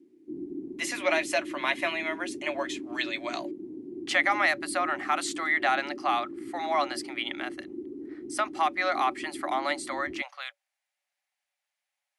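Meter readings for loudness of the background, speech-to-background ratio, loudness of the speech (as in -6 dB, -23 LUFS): -40.0 LUFS, 11.0 dB, -29.0 LUFS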